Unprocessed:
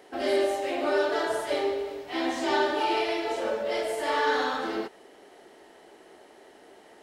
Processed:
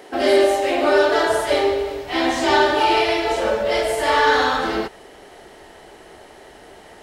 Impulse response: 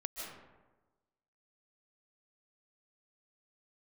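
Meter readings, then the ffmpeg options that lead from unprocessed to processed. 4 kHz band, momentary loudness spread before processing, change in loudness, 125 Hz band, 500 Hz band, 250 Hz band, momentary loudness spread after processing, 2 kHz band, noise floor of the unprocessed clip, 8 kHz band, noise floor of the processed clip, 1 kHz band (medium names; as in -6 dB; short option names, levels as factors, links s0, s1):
+10.5 dB, 6 LU, +9.5 dB, no reading, +9.0 dB, +8.0 dB, 7 LU, +10.0 dB, -54 dBFS, +10.5 dB, -45 dBFS, +10.0 dB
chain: -filter_complex "[0:a]asubboost=boost=6.5:cutoff=110,asplit=2[s0][s1];[s1]volume=10,asoftclip=hard,volume=0.1,volume=0.316[s2];[s0][s2]amix=inputs=2:normalize=0,volume=2.51"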